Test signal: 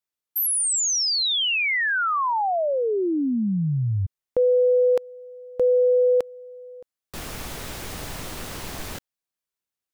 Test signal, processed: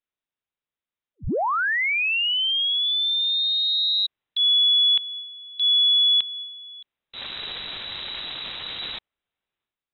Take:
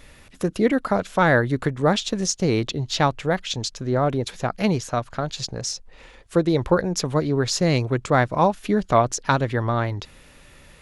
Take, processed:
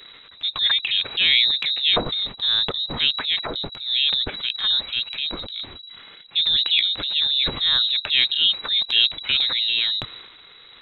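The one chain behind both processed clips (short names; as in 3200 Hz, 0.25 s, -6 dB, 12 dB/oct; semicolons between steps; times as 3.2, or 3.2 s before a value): inverted band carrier 3900 Hz; transient shaper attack -5 dB, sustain +8 dB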